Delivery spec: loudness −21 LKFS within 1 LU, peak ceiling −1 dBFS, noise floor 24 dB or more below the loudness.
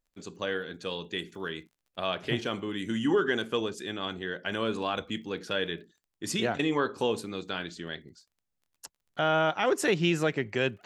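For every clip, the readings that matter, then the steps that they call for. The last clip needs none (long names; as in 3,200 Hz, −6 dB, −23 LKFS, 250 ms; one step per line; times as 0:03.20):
crackle rate 24 per second; integrated loudness −30.5 LKFS; sample peak −13.0 dBFS; target loudness −21.0 LKFS
→ click removal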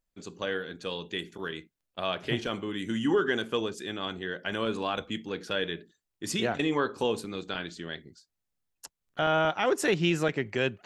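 crackle rate 0 per second; integrated loudness −30.5 LKFS; sample peak −13.0 dBFS; target loudness −21.0 LKFS
→ level +9.5 dB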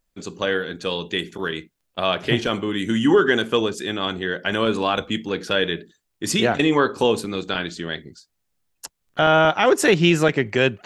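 integrated loudness −21.0 LKFS; sample peak −3.5 dBFS; background noise floor −75 dBFS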